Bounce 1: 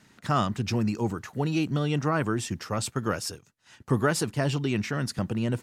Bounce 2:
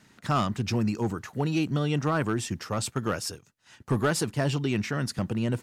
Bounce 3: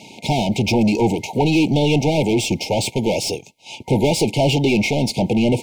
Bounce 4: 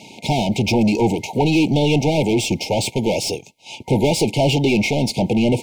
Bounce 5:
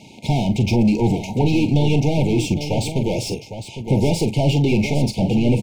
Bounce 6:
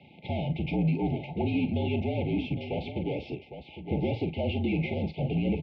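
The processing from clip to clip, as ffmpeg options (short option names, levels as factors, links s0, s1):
-af "asoftclip=type=hard:threshold=0.133"
-filter_complex "[0:a]asplit=2[s0][s1];[s1]highpass=f=720:p=1,volume=14.1,asoftclip=type=tanh:threshold=0.133[s2];[s0][s2]amix=inputs=2:normalize=0,lowpass=f=2300:p=1,volume=0.501,afftfilt=real='re*(1-between(b*sr/4096,940,2100))':imag='im*(1-between(b*sr/4096,940,2100))':win_size=4096:overlap=0.75,volume=2.82"
-af anull
-filter_complex "[0:a]lowshelf=f=200:g=12,asplit=2[s0][s1];[s1]aecho=0:1:42|807:0.316|0.316[s2];[s0][s2]amix=inputs=2:normalize=0,volume=0.501"
-af "highpass=f=160:t=q:w=0.5412,highpass=f=160:t=q:w=1.307,lowpass=f=3400:t=q:w=0.5176,lowpass=f=3400:t=q:w=0.7071,lowpass=f=3400:t=q:w=1.932,afreqshift=-51,volume=0.355"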